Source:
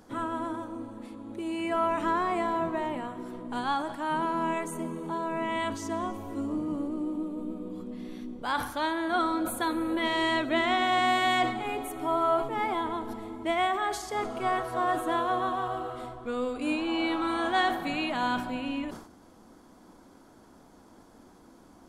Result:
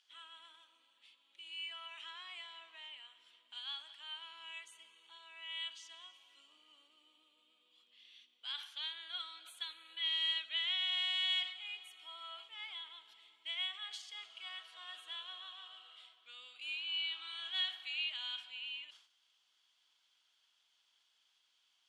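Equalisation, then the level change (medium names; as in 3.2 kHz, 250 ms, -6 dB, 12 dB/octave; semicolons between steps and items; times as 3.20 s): ladder band-pass 3.3 kHz, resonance 70%; +3.0 dB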